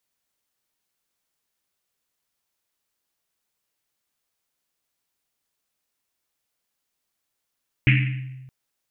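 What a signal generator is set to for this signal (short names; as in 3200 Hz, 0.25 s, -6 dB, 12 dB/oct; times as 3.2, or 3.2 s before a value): Risset drum length 0.62 s, pitch 130 Hz, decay 1.36 s, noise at 2300 Hz, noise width 990 Hz, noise 30%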